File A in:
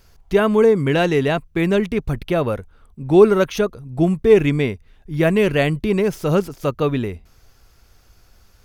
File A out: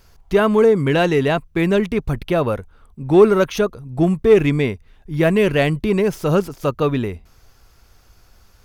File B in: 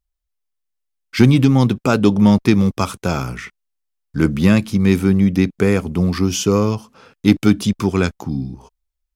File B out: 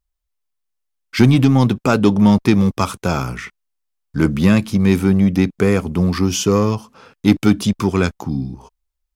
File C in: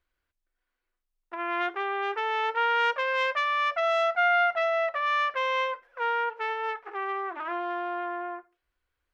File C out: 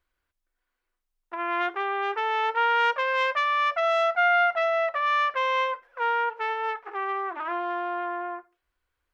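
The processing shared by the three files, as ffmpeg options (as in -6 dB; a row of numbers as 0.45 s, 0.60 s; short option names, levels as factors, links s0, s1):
-filter_complex "[0:a]equalizer=f=1000:w=1.8:g=2.5,asplit=2[s0][s1];[s1]asoftclip=type=hard:threshold=0.224,volume=0.316[s2];[s0][s2]amix=inputs=2:normalize=0,volume=0.841"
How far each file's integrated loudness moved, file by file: +0.5 LU, 0.0 LU, +2.0 LU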